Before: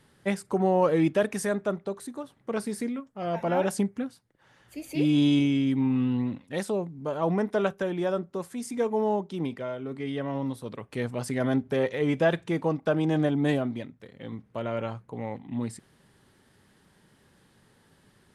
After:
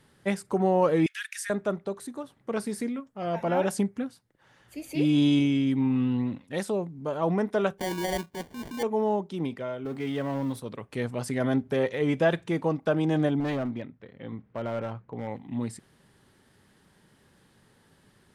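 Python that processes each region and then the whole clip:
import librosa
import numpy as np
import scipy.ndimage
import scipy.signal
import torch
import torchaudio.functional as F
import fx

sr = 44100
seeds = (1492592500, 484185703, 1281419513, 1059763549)

y = fx.chain(x, sr, fx.steep_highpass(hz=1500.0, slope=48),
    fx.band_squash(depth_pct=40), at=(1.06, 1.5))
y = fx.chain(y, sr, fx.transient(attack_db=-9, sustain_db=-2),
    fx.sample_hold(seeds[0], rate_hz=1300.0, jitter_pct=0), at=(7.78, 8.83))
y = fx.chain(y, sr, fx.law_mismatch(coded='mu'),
    fx.highpass(hz=56.0, slope=12),
    fx.clip_hard(threshold_db=-21.5), at=(9.85, 10.6))
y = fx.chain(y, sr, fx.lowpass(hz=2900.0, slope=12),
    fx.clip_hard(threshold_db=-25.5), at=(13.4, 15.28))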